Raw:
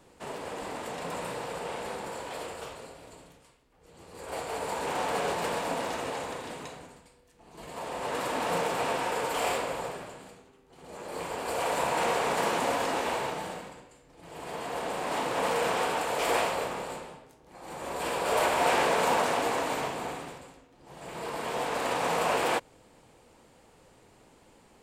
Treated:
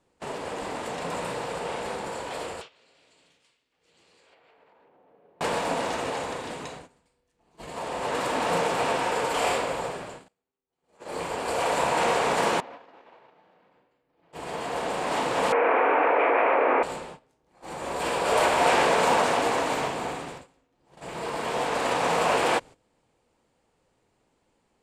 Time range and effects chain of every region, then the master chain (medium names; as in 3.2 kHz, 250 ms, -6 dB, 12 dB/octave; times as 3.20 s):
2.61–5.41 s: frequency weighting D + low-pass that closes with the level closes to 570 Hz, closed at -25 dBFS + compression 10:1, threshold -45 dBFS
10.28–11.10 s: bass shelf 250 Hz -4 dB + upward expansion 2.5:1, over -52 dBFS
12.60–14.33 s: high-pass 240 Hz 6 dB/octave + distance through air 250 m + compression 5:1, threshold -46 dBFS
15.52–16.83 s: Chebyshev band-pass 270–2400 Hz, order 4 + level flattener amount 100%
whole clip: gate -45 dBFS, range -16 dB; low-pass 9.8 kHz 12 dB/octave; trim +4 dB